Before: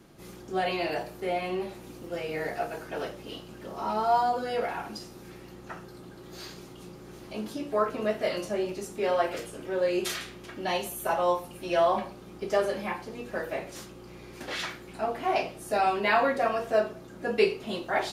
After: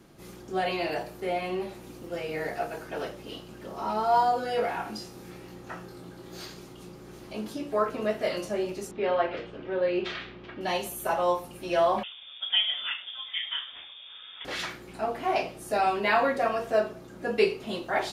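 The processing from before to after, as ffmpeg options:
-filter_complex "[0:a]asettb=1/sr,asplit=3[a][b][c];[a]atrim=end=4.114[d];[b]atrim=start=4.11:end=6.46,asetpts=PTS-STARTPTS,afade=t=in:d=0.004:c=qsin,afade=t=out:st=2.346:d=0.004:c=qsin,asplit=2[e][f];[f]adelay=23,volume=-4dB[g];[e][g]amix=inputs=2:normalize=0,atrim=end_sample=103635[h];[c]atrim=start=6.456[i];[d][h]acrossfade=d=0.004:c1=hsin:c2=qsin[j];[j][i]acrossfade=d=0.004:c1=qsin:c2=hsin,asettb=1/sr,asplit=3[k][l][m];[k]atrim=end=8.914[n];[l]atrim=start=8.91:end=10.61,asetpts=PTS-STARTPTS,afade=t=in:d=0.004:c=qsin,afade=t=out:st=1.696:d=0.004:c=qsin,lowpass=f=3.7k:w=0.5412,lowpass=f=3.7k:w=1.3066[o];[m]atrim=start=10.606[p];[n][o]acrossfade=d=0.004:c1=hsin:c2=qsin[q];[q][p]acrossfade=d=0.004:c1=qsin:c2=hsin,asettb=1/sr,asplit=3[r][s][t];[r]atrim=end=12.034[u];[s]atrim=start=12.03:end=14.45,asetpts=PTS-STARTPTS,afade=t=in:d=0.004:c=qsin,afade=t=out:st=2.416:d=0.004:c=qsin,lowpass=f=3.1k:t=q:w=0.5098,lowpass=f=3.1k:t=q:w=0.6013,lowpass=f=3.1k:t=q:w=0.9,lowpass=f=3.1k:t=q:w=2.563,afreqshift=-3700[v];[t]atrim=start=14.446[w];[u][v]acrossfade=d=0.004:c1=hsin:c2=qsin[x];[x][w]acrossfade=d=0.004:c1=qsin:c2=hsin"

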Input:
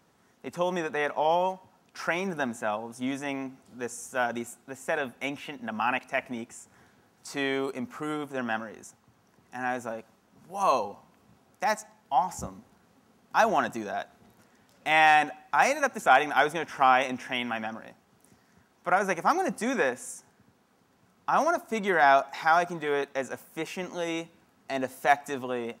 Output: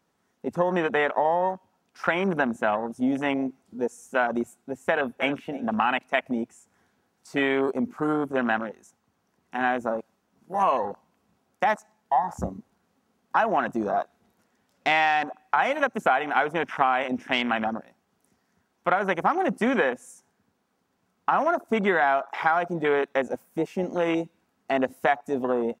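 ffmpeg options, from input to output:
-filter_complex "[0:a]asplit=2[a][b];[b]afade=t=in:st=4.87:d=0.01,afade=t=out:st=5.43:d=0.01,aecho=0:1:310|620|930:0.211349|0.0739721|0.0258902[c];[a][c]amix=inputs=2:normalize=0,afwtdn=0.0178,equalizer=f=120:t=o:w=0.22:g=-10,acompressor=threshold=-28dB:ratio=6,volume=9dB"

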